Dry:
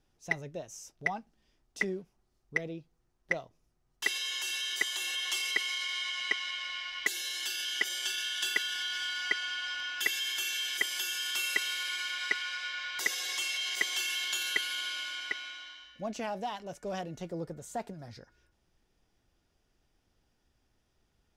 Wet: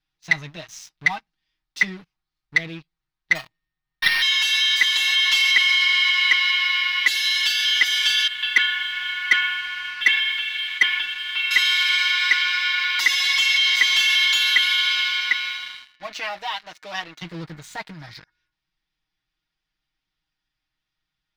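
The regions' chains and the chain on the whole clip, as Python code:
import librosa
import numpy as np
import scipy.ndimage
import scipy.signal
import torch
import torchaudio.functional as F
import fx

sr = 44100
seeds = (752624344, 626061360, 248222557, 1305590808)

y = fx.chain(x, sr, fx.sample_sort(block=8),
    fx.resample_bad(factor=6, down='none', up='hold'), at=(3.35, 4.22))
y = fx.chain(y, sr, fx.lowpass(hz=2800.0, slope=24),
    fx.band_widen(depth_pct=100), at=(8.27, 11.51))
y = fx.chain(y, sr, fx.highpass(hz=380.0, slope=12),
    fx.high_shelf(hz=9900.0, db=-5.5), at=(15.83, 17.22))
y = y + 0.85 * np.pad(y, (int(6.4 * sr / 1000.0), 0))[:len(y)]
y = fx.leveller(y, sr, passes=3)
y = fx.graphic_eq(y, sr, hz=(500, 1000, 2000, 4000, 8000), db=(-11, 5, 9, 12, -5))
y = F.gain(torch.from_numpy(y), -8.0).numpy()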